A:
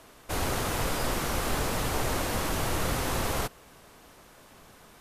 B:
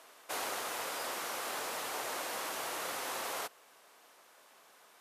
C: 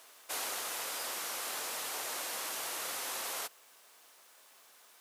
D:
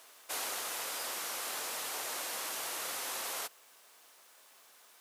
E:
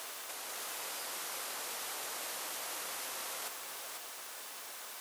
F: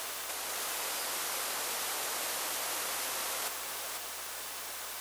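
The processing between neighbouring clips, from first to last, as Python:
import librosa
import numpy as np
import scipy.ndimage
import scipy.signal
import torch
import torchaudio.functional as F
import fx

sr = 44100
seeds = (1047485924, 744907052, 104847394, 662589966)

y1 = scipy.signal.sosfilt(scipy.signal.butter(2, 540.0, 'highpass', fs=sr, output='sos'), x)
y1 = fx.rider(y1, sr, range_db=4, speed_s=0.5)
y1 = F.gain(torch.from_numpy(y1), -5.5).numpy()
y2 = fx.high_shelf(y1, sr, hz=2400.0, db=9.5)
y2 = fx.dmg_noise_colour(y2, sr, seeds[0], colour='blue', level_db=-64.0)
y2 = F.gain(torch.from_numpy(y2), -5.0).numpy()
y3 = y2
y4 = fx.over_compress(y3, sr, threshold_db=-47.0, ratio=-1.0)
y4 = y4 + 10.0 ** (-5.5 / 20.0) * np.pad(y4, (int(495 * sr / 1000.0), 0))[:len(y4)]
y4 = F.gain(torch.from_numpy(y4), 5.0).numpy()
y5 = fx.add_hum(y4, sr, base_hz=60, snr_db=31)
y5 = F.gain(torch.from_numpy(y5), 5.5).numpy()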